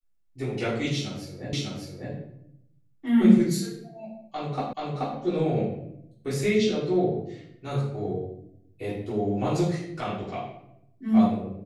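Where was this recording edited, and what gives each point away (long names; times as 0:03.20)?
0:01.53: the same again, the last 0.6 s
0:04.73: the same again, the last 0.43 s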